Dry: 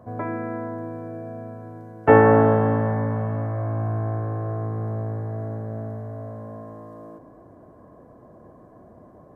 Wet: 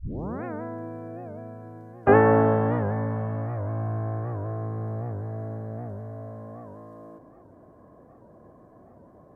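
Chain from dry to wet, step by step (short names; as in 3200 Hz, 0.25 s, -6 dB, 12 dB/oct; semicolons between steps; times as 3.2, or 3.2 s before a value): tape start at the beginning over 0.45 s; record warp 78 rpm, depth 160 cents; gain -3.5 dB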